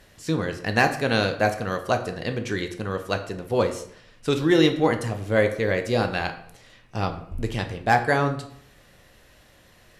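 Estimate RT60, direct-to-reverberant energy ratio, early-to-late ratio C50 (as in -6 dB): 0.60 s, 6.0 dB, 11.0 dB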